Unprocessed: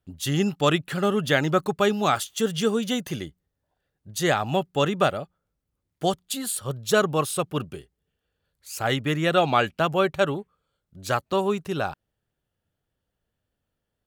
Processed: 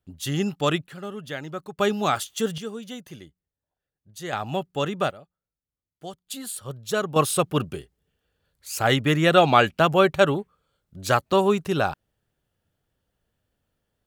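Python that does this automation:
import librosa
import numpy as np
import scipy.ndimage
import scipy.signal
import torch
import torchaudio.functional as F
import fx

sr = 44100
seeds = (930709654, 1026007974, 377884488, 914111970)

y = fx.gain(x, sr, db=fx.steps((0.0, -2.0), (0.87, -12.0), (1.78, -1.0), (2.58, -11.0), (4.33, -3.5), (5.11, -14.0), (6.27, -5.0), (7.16, 4.0)))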